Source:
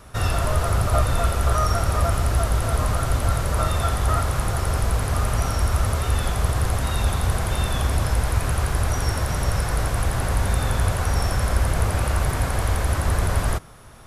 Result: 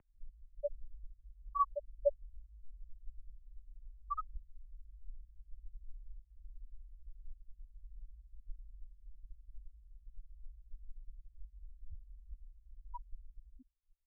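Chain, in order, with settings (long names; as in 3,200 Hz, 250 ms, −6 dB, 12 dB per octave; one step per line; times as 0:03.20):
tuned comb filter 360 Hz, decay 0.18 s, harmonics all, mix 60%
spectral peaks only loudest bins 2
single-sideband voice off tune −110 Hz 170–2,600 Hz
level +11 dB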